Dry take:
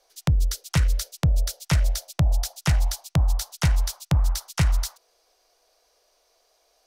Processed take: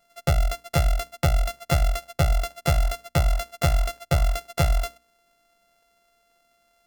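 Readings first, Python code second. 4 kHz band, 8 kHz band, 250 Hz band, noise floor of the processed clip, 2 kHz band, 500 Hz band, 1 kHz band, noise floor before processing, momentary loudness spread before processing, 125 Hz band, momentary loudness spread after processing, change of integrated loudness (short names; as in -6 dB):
-0.5 dB, -4.0 dB, -2.0 dB, -67 dBFS, +2.5 dB, +10.5 dB, +7.5 dB, -67 dBFS, 3 LU, -1.0 dB, 3 LU, 0.0 dB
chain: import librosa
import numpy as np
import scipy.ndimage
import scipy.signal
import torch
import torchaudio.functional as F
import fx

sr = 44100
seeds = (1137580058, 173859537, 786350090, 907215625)

y = np.r_[np.sort(x[:len(x) // 64 * 64].reshape(-1, 64), axis=1).ravel(), x[len(x) // 64 * 64:]]
y = fx.hum_notches(y, sr, base_hz=60, count=5)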